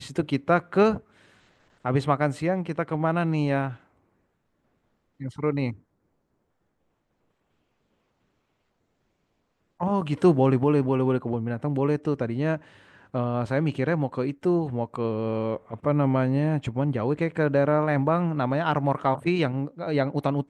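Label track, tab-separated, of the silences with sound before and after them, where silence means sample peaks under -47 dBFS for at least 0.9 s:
3.810000	5.200000	silence
5.790000	9.800000	silence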